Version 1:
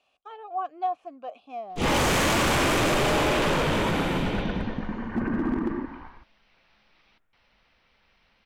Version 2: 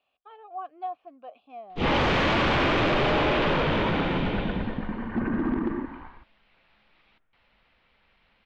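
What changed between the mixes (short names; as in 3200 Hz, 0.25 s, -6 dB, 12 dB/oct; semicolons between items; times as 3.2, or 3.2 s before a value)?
speech -6.0 dB; master: add LPF 4000 Hz 24 dB/oct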